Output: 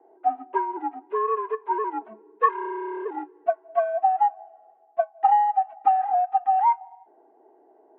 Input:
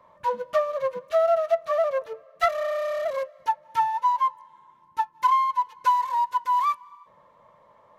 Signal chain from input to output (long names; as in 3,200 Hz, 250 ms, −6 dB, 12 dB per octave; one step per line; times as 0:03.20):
single-sideband voice off tune −230 Hz 530–3,100 Hz
envelope filter 450–1,100 Hz, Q 2.1, up, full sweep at −19.5 dBFS
level +6 dB